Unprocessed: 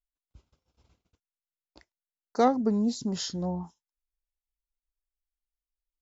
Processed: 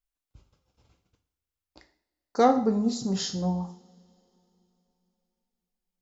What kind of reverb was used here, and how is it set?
two-slope reverb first 0.5 s, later 3.4 s, from -27 dB, DRR 5 dB; gain +1.5 dB

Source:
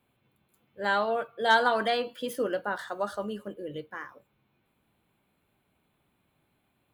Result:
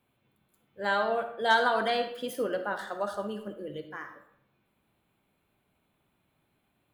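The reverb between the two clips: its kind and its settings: digital reverb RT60 0.73 s, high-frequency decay 0.6×, pre-delay 15 ms, DRR 8 dB; gain -1.5 dB

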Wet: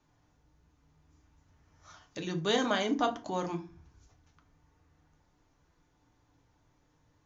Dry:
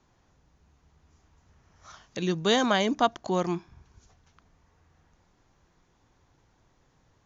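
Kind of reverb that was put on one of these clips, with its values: FDN reverb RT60 0.34 s, low-frequency decay 1.55×, high-frequency decay 0.7×, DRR 3.5 dB; gain -6.5 dB

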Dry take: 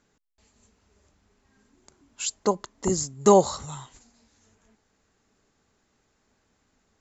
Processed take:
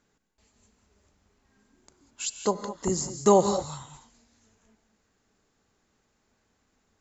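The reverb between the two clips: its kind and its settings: non-linear reverb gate 0.23 s rising, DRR 8 dB; gain -2.5 dB

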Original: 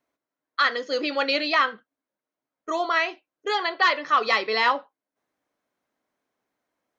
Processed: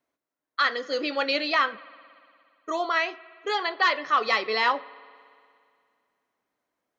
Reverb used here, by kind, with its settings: spring tank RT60 2.3 s, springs 57 ms, chirp 65 ms, DRR 19.5 dB; gain -2 dB

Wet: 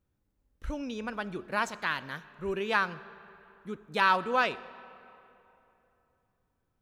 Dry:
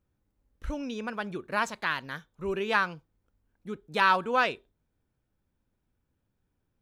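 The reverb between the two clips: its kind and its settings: digital reverb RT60 3.1 s, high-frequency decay 0.65×, pre-delay 10 ms, DRR 17 dB; gain -1.5 dB

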